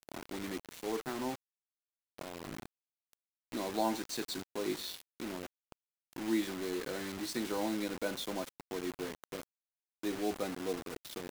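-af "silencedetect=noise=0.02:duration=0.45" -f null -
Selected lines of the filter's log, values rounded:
silence_start: 1.32
silence_end: 2.21 | silence_duration: 0.89
silence_start: 2.45
silence_end: 3.54 | silence_duration: 1.09
silence_start: 5.43
silence_end: 6.22 | silence_duration: 0.79
silence_start: 9.38
silence_end: 10.04 | silence_duration: 0.66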